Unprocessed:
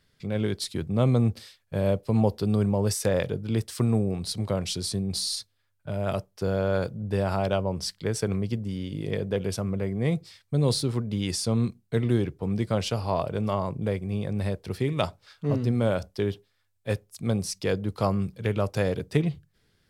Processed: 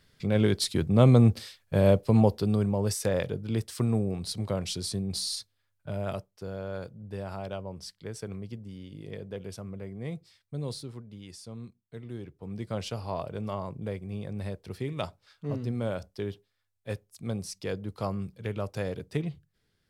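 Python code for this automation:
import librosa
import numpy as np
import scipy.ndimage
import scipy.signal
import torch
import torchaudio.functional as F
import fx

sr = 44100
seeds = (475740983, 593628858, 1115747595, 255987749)

y = fx.gain(x, sr, db=fx.line((1.99, 3.5), (2.66, -3.0), (5.97, -3.0), (6.44, -11.0), (10.6, -11.0), (11.21, -17.5), (12.04, -17.5), (12.77, -7.0)))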